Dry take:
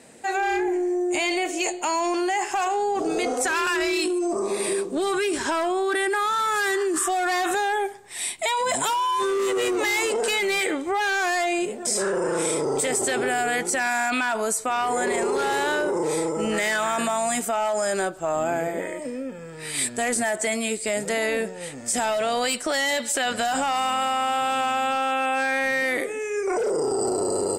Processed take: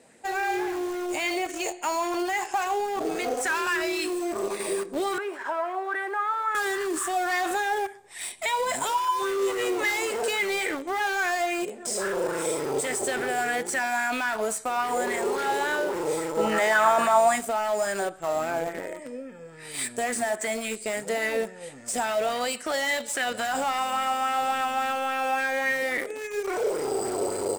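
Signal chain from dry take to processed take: 16.37–17.36 s: peaking EQ 910 Hz +9.5 dB 1.9 oct; Schroeder reverb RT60 0.51 s, combs from 29 ms, DRR 15.5 dB; in parallel at -9 dB: bit crusher 4-bit; 5.18–6.55 s: on the sum: three-band isolator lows -22 dB, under 410 Hz, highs -18 dB, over 2.1 kHz; sweeping bell 3.6 Hz 480–2000 Hz +7 dB; trim -8.5 dB

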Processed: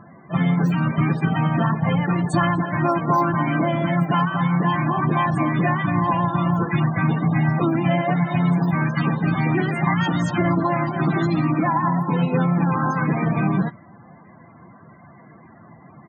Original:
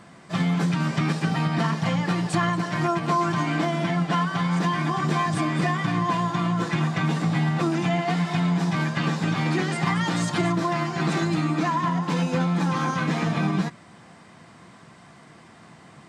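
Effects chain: modulation noise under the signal 12 dB; loudest bins only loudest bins 32; harmony voices -4 st -12 dB, -3 st -13 dB; trim +3.5 dB

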